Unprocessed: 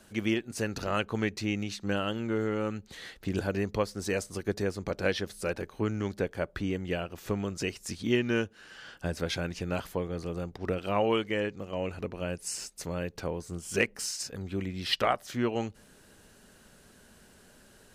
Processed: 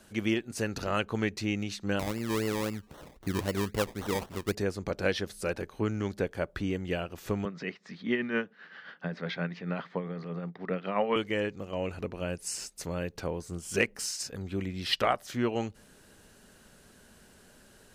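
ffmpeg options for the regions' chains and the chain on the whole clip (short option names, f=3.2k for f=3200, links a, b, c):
-filter_complex "[0:a]asettb=1/sr,asplit=3[a][b][c];[a]atrim=end=1.994[d];[b]atrim=start=1.99:end=4.55,asetpts=PTS-STARTPTS,afade=t=in:d=0.004:c=qsin,afade=t=out:st=2.556:d=0.004:c=qsin,equalizer=f=2k:t=o:w=1.3:g=-9.5,acrusher=samples=25:mix=1:aa=0.000001:lfo=1:lforange=15:lforate=3.8[e];[c]atrim=start=4.546[f];[d][e]acrossfade=d=0.004:c1=hsin:c2=qsin[g];[g][f]acrossfade=d=0.004:c1=qsin:c2=hsin,asettb=1/sr,asplit=3[h][i][j];[h]atrim=end=7.454[k];[i]atrim=start=7.45:end=11.16,asetpts=PTS-STARTPTS,afade=t=in:d=0.004:c=qsin,afade=t=out:st=3.706:d=0.004:c=qsin,bandreject=f=330:w=6.5,tremolo=f=7.6:d=0.52,highpass=f=170:w=0.5412,highpass=f=170:w=1.3066,equalizer=f=170:t=q:w=4:g=8,equalizer=f=1.2k:t=q:w=4:g=4,equalizer=f=1.9k:t=q:w=4:g=8,equalizer=f=2.8k:t=q:w=4:g=-5,lowpass=f=3.9k:w=0.5412,lowpass=f=3.9k:w=1.3066[l];[j]atrim=start=11.156[m];[k][l]acrossfade=d=0.004:c1=hsin:c2=qsin[n];[n][m]acrossfade=d=0.004:c1=qsin:c2=hsin"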